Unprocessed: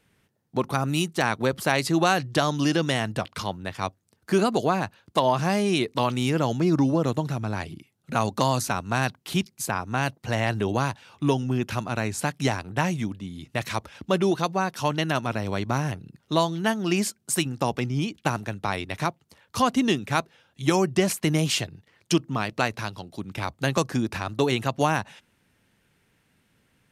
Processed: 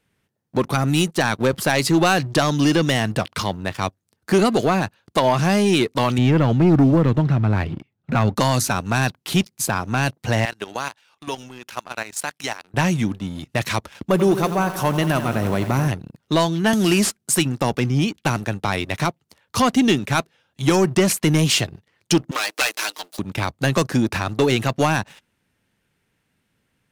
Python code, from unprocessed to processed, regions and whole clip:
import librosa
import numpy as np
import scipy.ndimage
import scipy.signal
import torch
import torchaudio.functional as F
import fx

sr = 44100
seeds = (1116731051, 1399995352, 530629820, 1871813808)

y = fx.chain(x, sr, fx.lowpass(hz=2800.0, slope=12),
    fx.low_shelf(hz=150.0, db=8.0), at=(6.18, 8.36))
y = fx.chain(y, sr, fx.highpass(hz=1100.0, slope=6),
    fx.level_steps(step_db=11), at=(10.45, 12.74))
y = fx.chain(y, sr, fx.curve_eq(hz=(1100.0, 4600.0, 13000.0), db=(0, -8, 7)),
    fx.echo_crushed(ms=87, feedback_pct=80, bits=7, wet_db=-13.0), at=(14.08, 15.88))
y = fx.chain(y, sr, fx.cvsd(bps=64000),
    fx.high_shelf(hz=10000.0, db=6.5),
    fx.band_squash(depth_pct=70), at=(16.73, 17.17))
y = fx.chain(y, sr, fx.lower_of_two(delay_ms=6.5),
    fx.highpass(hz=270.0, slope=24),
    fx.tilt_eq(slope=3.5), at=(22.31, 23.19))
y = fx.dynamic_eq(y, sr, hz=890.0, q=1.2, threshold_db=-32.0, ratio=4.0, max_db=-3)
y = fx.leveller(y, sr, passes=2)